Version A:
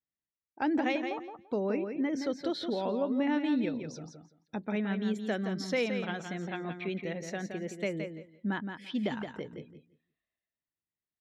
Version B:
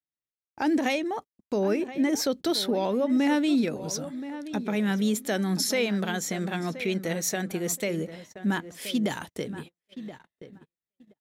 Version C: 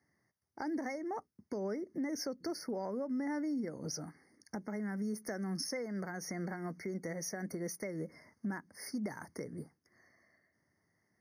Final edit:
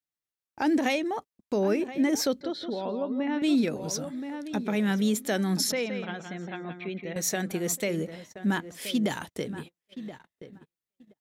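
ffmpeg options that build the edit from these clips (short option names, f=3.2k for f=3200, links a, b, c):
-filter_complex "[0:a]asplit=2[a][b];[1:a]asplit=3[c][d][e];[c]atrim=end=2.412[f];[a]atrim=start=2.408:end=3.422[g];[d]atrim=start=3.418:end=5.722[h];[b]atrim=start=5.718:end=7.162[i];[e]atrim=start=7.158[j];[f][g]acrossfade=d=0.004:c1=hsin:c2=hsin[k];[k][h]acrossfade=d=0.004:c1=hsin:c2=hsin[l];[l][i]acrossfade=d=0.004:c1=hsin:c2=hsin[m];[m][j]acrossfade=d=0.004:c1=hsin:c2=hsin"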